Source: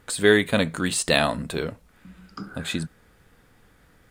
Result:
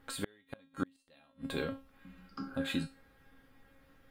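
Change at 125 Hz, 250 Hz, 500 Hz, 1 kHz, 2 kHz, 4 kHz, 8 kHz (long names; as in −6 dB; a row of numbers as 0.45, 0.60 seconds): −14.5, −12.0, −19.5, −17.5, −19.5, −17.5, −20.5 decibels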